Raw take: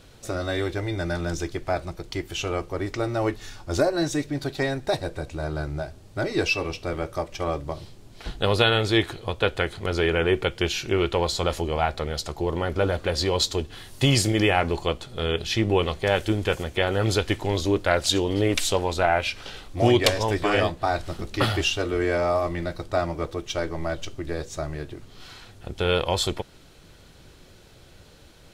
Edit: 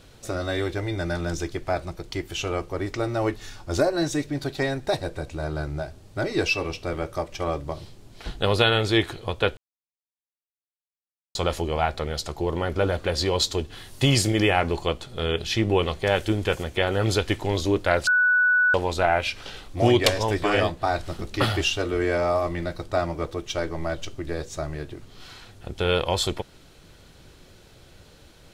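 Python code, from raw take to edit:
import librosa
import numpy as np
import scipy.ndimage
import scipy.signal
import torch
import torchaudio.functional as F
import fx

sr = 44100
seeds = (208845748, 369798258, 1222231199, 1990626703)

y = fx.edit(x, sr, fx.silence(start_s=9.57, length_s=1.78),
    fx.bleep(start_s=18.07, length_s=0.67, hz=1480.0, db=-16.0), tone=tone)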